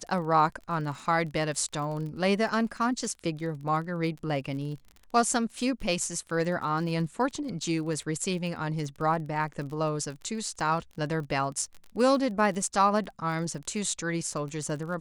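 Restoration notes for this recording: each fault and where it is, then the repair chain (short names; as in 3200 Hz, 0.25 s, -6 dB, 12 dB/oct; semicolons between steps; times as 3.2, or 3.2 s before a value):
crackle 33/s -37 dBFS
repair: de-click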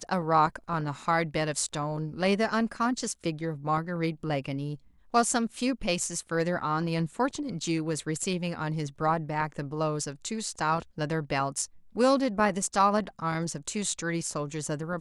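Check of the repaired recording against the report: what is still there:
none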